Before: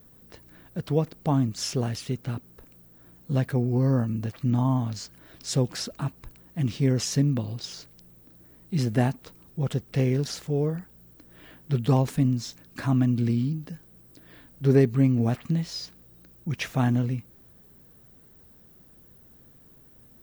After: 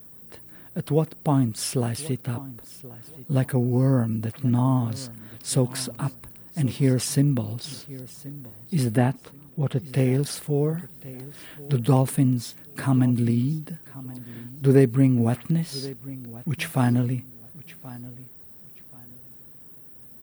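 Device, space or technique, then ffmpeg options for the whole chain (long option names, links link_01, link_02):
budget condenser microphone: -filter_complex "[0:a]asettb=1/sr,asplit=3[link_01][link_02][link_03];[link_01]atrim=end=8.974[link_04];[link_02]atrim=start=8.97:end=9.82,asetpts=PTS-STARTPTS,afade=type=in:duration=0.004:curve=qsin,afade=type=out:start_time=0.846:duration=0.004:curve=qsin,acrossover=split=4000[link_05][link_06];[link_06]acompressor=threshold=-59dB:ratio=4:attack=1:release=60[link_07];[link_05][link_07]amix=inputs=2:normalize=0[link_08];[link_03]atrim=start=9.816[link_09];[link_04][link_08]acrossfade=duration=0.004:curve1=hsin:curve2=qsin[link_10];[link_10][link_09]acrossfade=duration=0.004:curve1=qsin:curve2=hsin,highpass=78,highshelf=frequency=7900:width_type=q:width=3:gain=6.5,asettb=1/sr,asplit=3[link_11][link_12][link_13];[link_11]atrim=end=10.794[link_14];[link_12]atrim=start=10.79:end=11.72,asetpts=PTS-STARTPTS,afade=type=in:duration=0.004:curve=qsin,afade=type=out:start_time=0.926:duration=0.004:curve=qsin,equalizer=frequency=4600:width_type=o:width=2.6:gain=6.5[link_15];[link_13]atrim=start=11.716[link_16];[link_14][link_15]acrossfade=duration=0.004:curve1=hsin:curve2=qsin[link_17];[link_17][link_16]acrossfade=duration=0.004:curve1=qsin:curve2=hsin,aecho=1:1:1079|2158:0.119|0.0297,volume=2.5dB"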